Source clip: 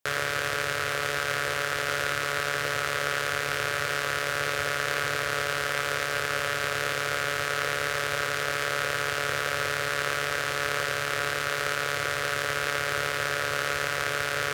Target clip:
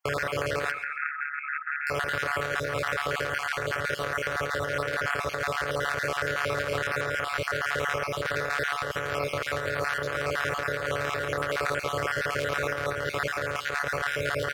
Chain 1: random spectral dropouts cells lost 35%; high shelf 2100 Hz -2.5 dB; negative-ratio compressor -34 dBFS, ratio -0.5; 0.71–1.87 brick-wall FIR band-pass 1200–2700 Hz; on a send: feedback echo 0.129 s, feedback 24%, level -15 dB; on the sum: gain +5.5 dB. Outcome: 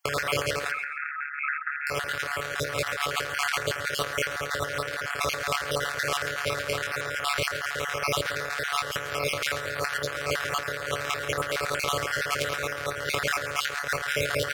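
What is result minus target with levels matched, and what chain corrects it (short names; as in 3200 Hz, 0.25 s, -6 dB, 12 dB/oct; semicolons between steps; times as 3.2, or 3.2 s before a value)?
4000 Hz band +5.0 dB
random spectral dropouts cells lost 35%; high shelf 2100 Hz -12 dB; negative-ratio compressor -34 dBFS, ratio -0.5; 0.71–1.87 brick-wall FIR band-pass 1200–2700 Hz; on a send: feedback echo 0.129 s, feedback 24%, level -15 dB; on the sum: gain +5.5 dB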